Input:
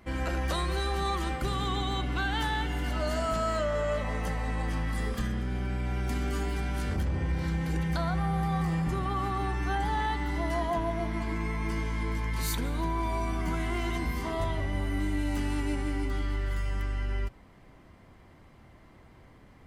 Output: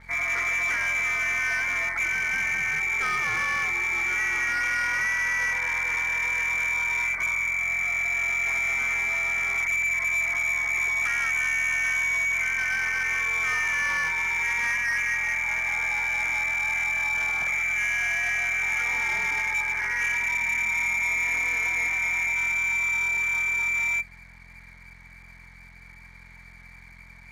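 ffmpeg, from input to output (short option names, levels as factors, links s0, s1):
-filter_complex "[0:a]lowpass=f=2800:t=q:w=0.5098,lowpass=f=2800:t=q:w=0.6013,lowpass=f=2800:t=q:w=0.9,lowpass=f=2800:t=q:w=2.563,afreqshift=-3300,asplit=2[s0][s1];[s1]aeval=exprs='0.0335*(abs(mod(val(0)/0.0335+3,4)-2)-1)':c=same,volume=0.631[s2];[s0][s2]amix=inputs=2:normalize=0,aeval=exprs='val(0)+0.00355*(sin(2*PI*60*n/s)+sin(2*PI*2*60*n/s)/2+sin(2*PI*3*60*n/s)/3+sin(2*PI*4*60*n/s)/4+sin(2*PI*5*60*n/s)/5)':c=same,aeval=exprs='sgn(val(0))*max(abs(val(0))-0.00126,0)':c=same,asetrate=31752,aresample=44100,volume=1.19"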